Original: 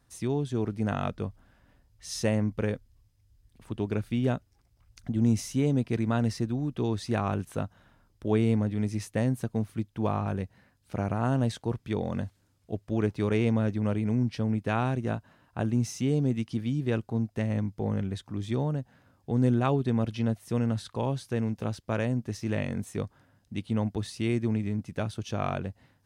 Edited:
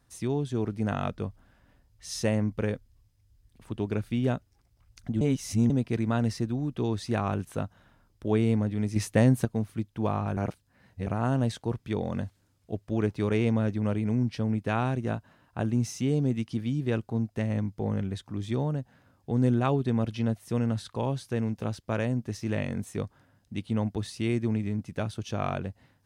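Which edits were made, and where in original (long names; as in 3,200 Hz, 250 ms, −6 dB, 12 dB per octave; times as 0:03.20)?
0:05.21–0:05.70: reverse
0:08.96–0:09.45: clip gain +6 dB
0:10.37–0:11.07: reverse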